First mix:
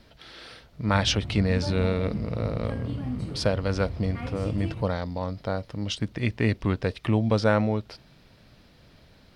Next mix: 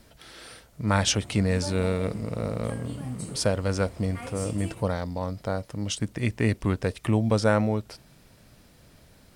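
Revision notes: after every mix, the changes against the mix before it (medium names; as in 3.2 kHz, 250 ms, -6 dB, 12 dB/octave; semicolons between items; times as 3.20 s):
background: add tone controls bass -12 dB, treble +7 dB; master: add resonant high shelf 5.9 kHz +10.5 dB, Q 1.5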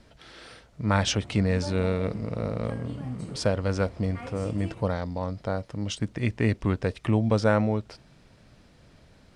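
background: add treble shelf 4.7 kHz -7 dB; master: add distance through air 77 m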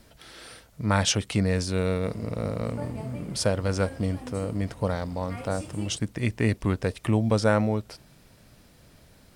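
background: entry +1.15 s; master: remove distance through air 77 m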